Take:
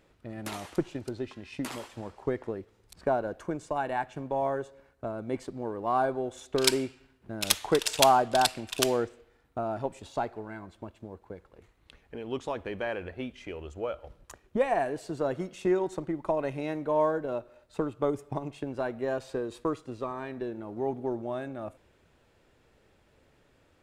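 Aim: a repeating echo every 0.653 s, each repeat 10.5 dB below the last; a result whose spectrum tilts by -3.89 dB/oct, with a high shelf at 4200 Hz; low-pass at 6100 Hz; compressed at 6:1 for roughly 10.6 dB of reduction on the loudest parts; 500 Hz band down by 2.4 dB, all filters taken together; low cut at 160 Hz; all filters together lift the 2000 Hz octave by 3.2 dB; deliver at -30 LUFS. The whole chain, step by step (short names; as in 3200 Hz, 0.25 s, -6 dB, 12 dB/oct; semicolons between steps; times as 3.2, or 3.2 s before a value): HPF 160 Hz; LPF 6100 Hz; bell 500 Hz -3.5 dB; bell 2000 Hz +3 dB; high shelf 4200 Hz +7 dB; compressor 6:1, threshold -29 dBFS; feedback echo 0.653 s, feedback 30%, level -10.5 dB; gain +6.5 dB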